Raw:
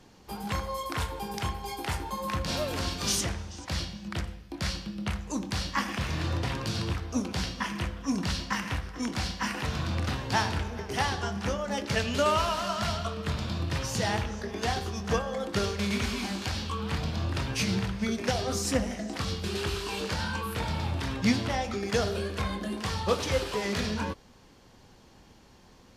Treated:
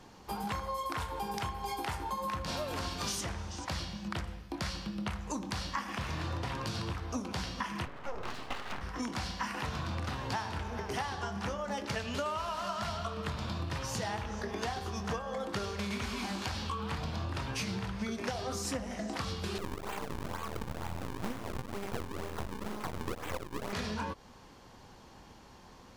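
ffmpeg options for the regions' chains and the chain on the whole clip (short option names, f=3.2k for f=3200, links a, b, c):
-filter_complex "[0:a]asettb=1/sr,asplit=3[a][b][c];[a]atrim=end=7.854[d];[b]atrim=start=7.85:end=8.81,asetpts=PTS-STARTPTS,afade=t=in:d=0.004:c=qsin,afade=t=out:st=0.956:d=0.004:c=qsin,lowpass=2.3k,lowshelf=f=140:g=-9.5,aeval=exprs='abs(val(0))':c=same[e];[c]atrim=start=8.806[f];[d][e]acrossfade=d=0.004:c1=hsin:c2=qsin[g];[g][f]acrossfade=d=0.004:c1=qsin:c2=hsin,asettb=1/sr,asplit=3[h][i][j];[h]atrim=end=19.584[k];[i]atrim=start=19.58:end=23.73,asetpts=PTS-STARTPTS,afade=t=in:d=0.004:c=qsin,afade=t=out:st=4.146:d=0.004:c=qsin,acrusher=samples=38:mix=1:aa=0.000001:lfo=1:lforange=60.8:lforate=2.1,aeval=exprs='max(val(0),0)':c=same[l];[j]atrim=start=23.726[m];[k][l]acrossfade=d=0.004:c1=hsin:c2=qsin[n];[n][m]acrossfade=d=0.004:c1=qsin:c2=hsin,equalizer=f=1k:w=1.2:g=5.5,acompressor=threshold=-33dB:ratio=6"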